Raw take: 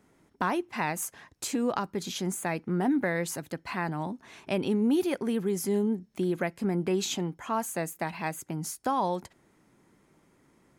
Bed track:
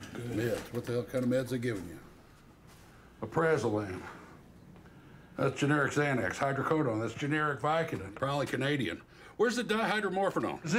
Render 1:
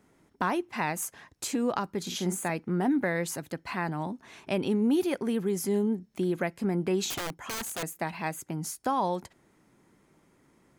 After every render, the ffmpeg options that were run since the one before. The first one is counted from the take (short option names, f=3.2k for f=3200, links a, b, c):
-filter_complex "[0:a]asettb=1/sr,asplit=3[a][b][c];[a]atrim=end=2.024[d];[b]atrim=start=2.02:end=2.5,asetpts=PTS-STARTPTS,afade=t=in:d=0.004:c=qsin,afade=t=out:st=0.476:d=0.004:c=qsin,asplit=2[e][f];[f]adelay=45,volume=-7dB[g];[e][g]amix=inputs=2:normalize=0,atrim=end_sample=21168[h];[c]atrim=start=2.496[i];[d][h]acrossfade=d=0.004:c1=hsin:c2=qsin[j];[j][i]acrossfade=d=0.004:c1=qsin:c2=hsin,asettb=1/sr,asplit=3[k][l][m];[k]atrim=end=7.104[n];[l]atrim=start=7.1:end=7.83,asetpts=PTS-STARTPTS,afade=t=in:d=0.004:c=qsin,afade=t=out:st=0.726:d=0.004:c=qsin,aeval=exprs='(mod(25.1*val(0)+1,2)-1)/25.1':c=same[o];[m]atrim=start=7.826[p];[n][o]acrossfade=d=0.004:c1=hsin:c2=qsin[q];[q][p]acrossfade=d=0.004:c1=qsin:c2=hsin"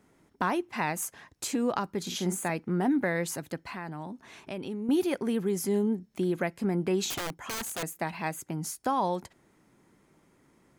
-filter_complex "[0:a]asettb=1/sr,asplit=3[a][b][c];[a]atrim=end=3.654[d];[b]atrim=start=3.65:end=4.89,asetpts=PTS-STARTPTS,afade=t=in:d=0.004:c=qsin,afade=t=out:st=1.236:d=0.004:c=qsin,acompressor=threshold=-39dB:ratio=2:attack=3.2:release=140:knee=1:detection=peak[e];[c]atrim=start=4.886[f];[d][e]acrossfade=d=0.004:c1=hsin:c2=qsin[g];[g][f]acrossfade=d=0.004:c1=qsin:c2=hsin"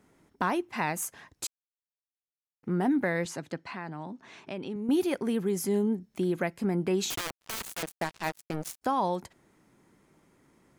-filter_complex "[0:a]asettb=1/sr,asplit=3[a][b][c];[a]atrim=end=3.254[d];[b]atrim=start=3.25:end=4.76,asetpts=PTS-STARTPTS,afade=t=in:d=0.004:c=qsin,afade=t=out:st=1.506:d=0.004:c=qsin,highpass=110,lowpass=6.4k[e];[c]atrim=start=4.756[f];[d][e]acrossfade=d=0.004:c1=hsin:c2=qsin[g];[g][f]acrossfade=d=0.004:c1=qsin:c2=hsin,asplit=3[h][i][j];[h]afade=t=out:st=7.14:d=0.02[k];[i]acrusher=bits=4:mix=0:aa=0.5,afade=t=in:st=7.14:d=0.02,afade=t=out:st=8.81:d=0.02[l];[j]afade=t=in:st=8.81:d=0.02[m];[k][l][m]amix=inputs=3:normalize=0,asplit=3[n][o][p];[n]atrim=end=1.47,asetpts=PTS-STARTPTS,afade=t=out:st=1.466:d=0.004:c=hsin[q];[o]atrim=start=1.47:end=2.63,asetpts=PTS-STARTPTS,volume=0[r];[p]atrim=start=2.63,asetpts=PTS-STARTPTS,afade=t=in:d=0.004:c=hsin[s];[q][r][s]concat=n=3:v=0:a=1"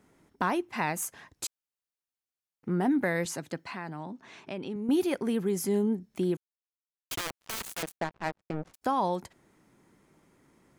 -filter_complex "[0:a]asettb=1/sr,asplit=3[a][b][c];[a]atrim=end=3.034[d];[b]atrim=start=3.03:end=4.01,asetpts=PTS-STARTPTS,afade=t=in:d=0.004:c=qsin,afade=t=out:st=0.976:d=0.004:c=qsin,highshelf=f=8.8k:g=11.5[e];[c]atrim=start=4.006[f];[d][e]acrossfade=d=0.004:c1=hsin:c2=qsin[g];[g][f]acrossfade=d=0.004:c1=qsin:c2=hsin,asettb=1/sr,asplit=3[h][i][j];[h]atrim=end=7.964[k];[i]atrim=start=7.96:end=8.74,asetpts=PTS-STARTPTS,afade=t=in:d=0.004:c=qsin,afade=t=out:st=0.776:d=0.004:c=qsin,adynamicsmooth=sensitivity=2.5:basefreq=990[l];[j]atrim=start=8.736[m];[k][l]acrossfade=d=0.004:c1=hsin:c2=qsin[n];[n][m]acrossfade=d=0.004:c1=qsin:c2=hsin,asplit=3[o][p][q];[o]atrim=end=6.37,asetpts=PTS-STARTPTS,afade=t=out:st=6.366:d=0.004:c=hsin[r];[p]atrim=start=6.37:end=7.11,asetpts=PTS-STARTPTS,volume=0[s];[q]atrim=start=7.11,asetpts=PTS-STARTPTS,afade=t=in:d=0.004:c=hsin[t];[r][s][t]concat=n=3:v=0:a=1"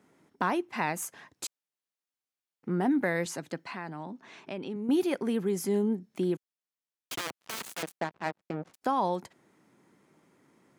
-af "highpass=140,highshelf=f=7.6k:g=-4.5"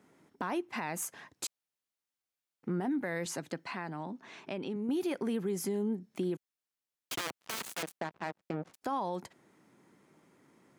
-af "alimiter=limit=-22.5dB:level=0:latency=1:release=40,acompressor=threshold=-32dB:ratio=2"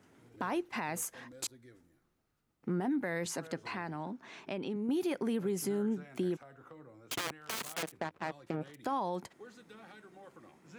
-filter_complex "[1:a]volume=-24dB[a];[0:a][a]amix=inputs=2:normalize=0"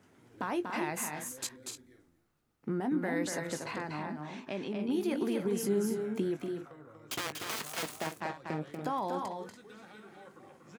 -filter_complex "[0:a]asplit=2[a][b];[b]adelay=20,volume=-12dB[c];[a][c]amix=inputs=2:normalize=0,aecho=1:1:239.1|285.7:0.562|0.316"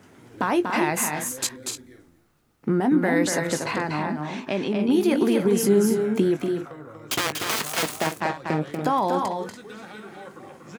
-af "volume=11.5dB"